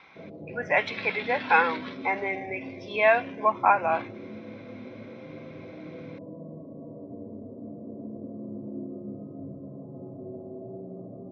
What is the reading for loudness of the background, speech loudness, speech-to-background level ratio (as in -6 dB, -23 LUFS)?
-41.0 LUFS, -25.5 LUFS, 15.5 dB